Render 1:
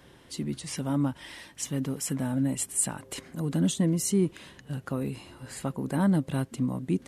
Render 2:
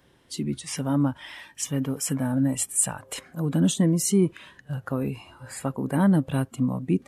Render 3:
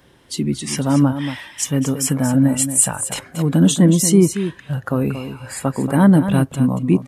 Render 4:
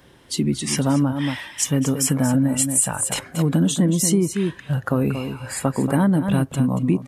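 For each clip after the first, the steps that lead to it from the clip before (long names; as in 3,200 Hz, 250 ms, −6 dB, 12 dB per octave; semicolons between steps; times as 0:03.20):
noise reduction from a noise print of the clip's start 10 dB; level +4 dB
single-tap delay 231 ms −10 dB; level +8 dB
downward compressor 6 to 1, threshold −16 dBFS, peak gain reduction 9 dB; level +1 dB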